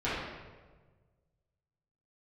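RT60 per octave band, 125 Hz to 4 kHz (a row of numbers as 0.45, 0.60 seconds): 2.1, 1.6, 1.5, 1.3, 1.1, 0.90 seconds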